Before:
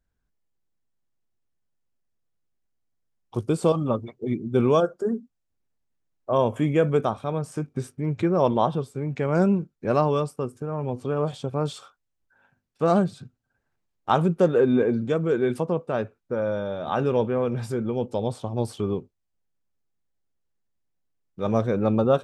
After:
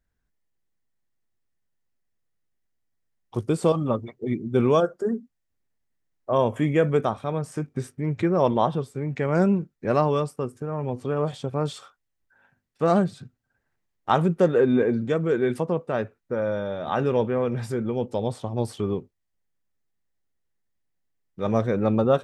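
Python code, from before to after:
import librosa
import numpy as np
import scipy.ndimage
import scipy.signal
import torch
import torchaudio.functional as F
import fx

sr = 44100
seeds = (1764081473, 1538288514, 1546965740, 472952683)

y = fx.peak_eq(x, sr, hz=1900.0, db=7.0, octaves=0.28)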